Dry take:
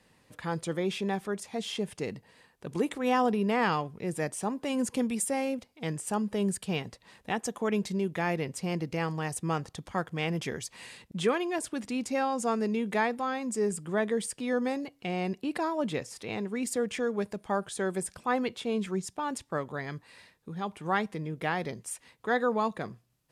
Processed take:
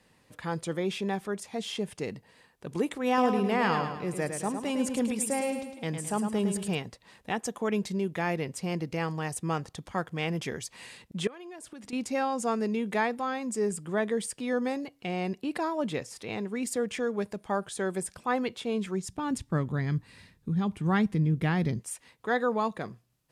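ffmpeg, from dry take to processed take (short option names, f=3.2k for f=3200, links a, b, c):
-filter_complex "[0:a]asettb=1/sr,asplit=3[a][b][c];[a]atrim=end=3.074[d];[b]atrim=start=3.07:end=6.75,asetpts=PTS-STARTPTS,afade=t=in:d=0.004:c=qsin,afade=t=out:st=3.676:d=0.004:c=qsin,aecho=1:1:107|214|321|428|535:0.447|0.201|0.0905|0.0407|0.0183,atrim=end_sample=162288[e];[c]atrim=start=6.746[f];[d][e]acrossfade=d=0.004:c1=hsin:c2=qsin[g];[g][f]acrossfade=d=0.004:c1=qsin:c2=hsin,asettb=1/sr,asplit=3[h][i][j];[h]atrim=end=11.274[k];[i]atrim=start=11.27:end=11.93,asetpts=PTS-STARTPTS,afade=t=in:d=0.004:c=qsin,afade=t=out:st=0.656:d=0.004:c=qsin,acompressor=threshold=-40dB:ratio=16:attack=3.2:release=140:knee=1:detection=peak[l];[j]atrim=start=11.926[m];[k][l]acrossfade=d=0.004:c1=hsin:c2=qsin[n];[n][m]acrossfade=d=0.004:c1=qsin:c2=hsin,asplit=3[o][p][q];[o]afade=t=out:st=19.08:d=0.02[r];[p]asubboost=boost=5.5:cutoff=240,afade=t=in:st=19.08:d=0.02,afade=t=out:st=21.78:d=0.02[s];[q]afade=t=in:st=21.78:d=0.02[t];[r][s][t]amix=inputs=3:normalize=0"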